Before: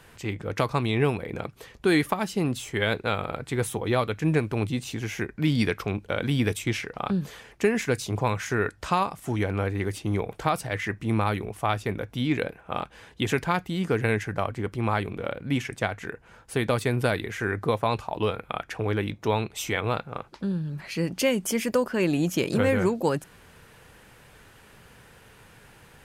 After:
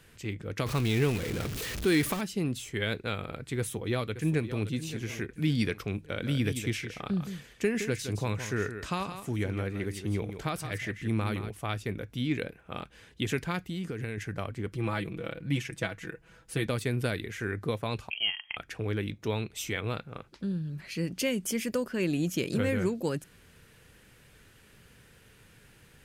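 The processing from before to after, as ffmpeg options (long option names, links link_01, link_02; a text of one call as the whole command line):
ffmpeg -i in.wav -filter_complex "[0:a]asettb=1/sr,asplit=3[link_01][link_02][link_03];[link_01]atrim=end=0.664[link_04];[link_02]atrim=start=0.66:end=2.21,asetpts=PTS-STARTPTS,afade=type=in:duration=0.004:curve=qsin,afade=type=out:start_time=1.546:duration=0.004:curve=qsin,aeval=exprs='val(0)+0.5*0.0501*sgn(val(0))':channel_layout=same[link_05];[link_03]atrim=start=2.206[link_06];[link_04][link_05]acrossfade=duration=0.004:curve1=hsin:curve2=qsin[link_07];[link_07][link_06]acrossfade=duration=0.004:curve1=qsin:curve2=hsin,asplit=2[link_08][link_09];[link_09]afade=type=in:start_time=3.58:duration=0.01,afade=type=out:start_time=4.65:duration=0.01,aecho=0:1:570|1140|1710|2280:0.237137|0.0948549|0.037942|0.0151768[link_10];[link_08][link_10]amix=inputs=2:normalize=0,asplit=3[link_11][link_12][link_13];[link_11]afade=type=out:start_time=6.21:duration=0.02[link_14];[link_12]aecho=1:1:167:0.335,afade=type=in:start_time=6.21:duration=0.02,afade=type=out:start_time=11.49:duration=0.02[link_15];[link_13]afade=type=in:start_time=11.49:duration=0.02[link_16];[link_14][link_15][link_16]amix=inputs=3:normalize=0,asettb=1/sr,asplit=3[link_17][link_18][link_19];[link_17]atrim=end=13.604[link_20];[link_18]atrim=start=13.6:end=14.18,asetpts=PTS-STARTPTS,afade=type=in:duration=0.004:curve=qsin,afade=type=out:start_time=0.576:duration=0.004:curve=qsin,acompressor=threshold=-26dB:ratio=6:attack=3.2:release=140:knee=1:detection=peak[link_21];[link_19]atrim=start=14.176[link_22];[link_20][link_21]acrossfade=duration=0.004:curve1=hsin:curve2=qsin[link_23];[link_23][link_22]acrossfade=duration=0.004:curve1=qsin:curve2=hsin,asettb=1/sr,asplit=3[link_24][link_25][link_26];[link_24]atrim=end=14.724[link_27];[link_25]atrim=start=14.72:end=16.66,asetpts=PTS-STARTPTS,afade=type=in:duration=0.004:curve=qsin,afade=type=out:start_time=1.936:duration=0.004:curve=qsin,aecho=1:1:6.1:0.65,atrim=end_sample=85554[link_28];[link_26]atrim=start=16.656[link_29];[link_27][link_28]acrossfade=duration=0.004:curve1=hsin:curve2=qsin[link_30];[link_30][link_29]acrossfade=duration=0.004:curve1=qsin:curve2=hsin,asettb=1/sr,asplit=3[link_31][link_32][link_33];[link_31]atrim=end=18.104[link_34];[link_32]atrim=start=18.1:end=18.57,asetpts=PTS-STARTPTS,afade=type=in:duration=0.004:curve=qsin,afade=type=out:start_time=0.466:duration=0.004:curve=qsin,lowpass=frequency=2800:width_type=q:width=0.5098,lowpass=frequency=2800:width_type=q:width=0.6013,lowpass=frequency=2800:width_type=q:width=0.9,lowpass=frequency=2800:width_type=q:width=2.563,afreqshift=-3300[link_35];[link_33]atrim=start=18.566[link_36];[link_34][link_35]acrossfade=duration=0.004:curve1=hsin:curve2=qsin[link_37];[link_37][link_36]acrossfade=duration=0.004:curve1=qsin:curve2=hsin,equalizer=frequency=860:width=1.1:gain=-9.5,volume=-3.5dB" out.wav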